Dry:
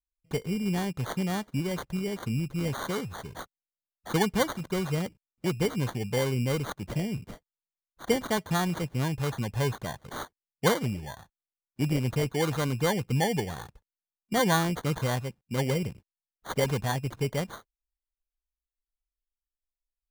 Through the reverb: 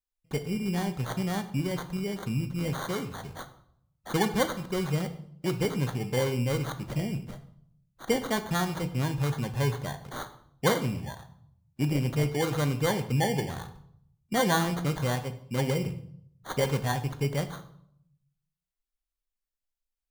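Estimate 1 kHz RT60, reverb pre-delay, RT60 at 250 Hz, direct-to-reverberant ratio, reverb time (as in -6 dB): 0.65 s, 4 ms, 0.85 s, 8.0 dB, 0.65 s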